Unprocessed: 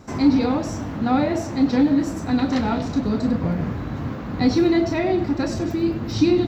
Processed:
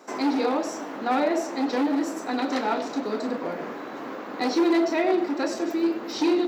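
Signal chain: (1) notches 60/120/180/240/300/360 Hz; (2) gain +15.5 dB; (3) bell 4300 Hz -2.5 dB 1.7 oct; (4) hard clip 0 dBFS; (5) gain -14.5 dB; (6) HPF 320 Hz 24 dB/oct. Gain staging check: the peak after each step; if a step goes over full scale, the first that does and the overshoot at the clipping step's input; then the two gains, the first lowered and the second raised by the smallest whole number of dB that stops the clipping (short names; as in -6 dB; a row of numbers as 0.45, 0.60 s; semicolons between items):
-7.5, +8.0, +8.0, 0.0, -14.5, -12.5 dBFS; step 2, 8.0 dB; step 2 +7.5 dB, step 5 -6.5 dB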